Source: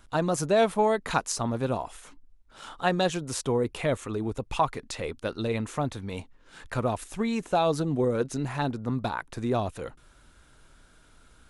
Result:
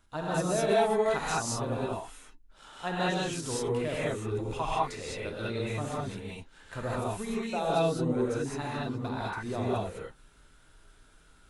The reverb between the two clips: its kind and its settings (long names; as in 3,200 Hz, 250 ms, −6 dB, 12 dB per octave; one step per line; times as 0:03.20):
reverb whose tail is shaped and stops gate 230 ms rising, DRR −7.5 dB
level −10 dB